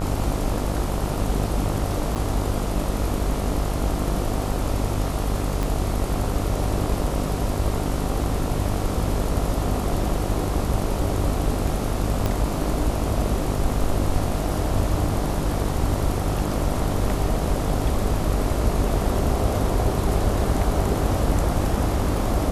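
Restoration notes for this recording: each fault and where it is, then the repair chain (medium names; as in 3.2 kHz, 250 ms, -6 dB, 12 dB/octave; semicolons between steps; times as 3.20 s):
buzz 50 Hz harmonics 28 -27 dBFS
2.15–2.16 s: dropout 7.8 ms
5.63 s: pop
12.26 s: pop -10 dBFS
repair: de-click; de-hum 50 Hz, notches 28; interpolate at 2.15 s, 7.8 ms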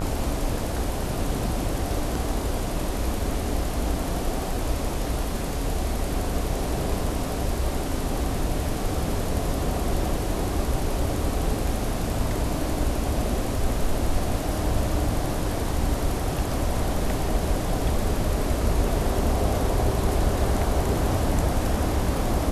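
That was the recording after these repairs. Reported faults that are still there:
5.63 s: pop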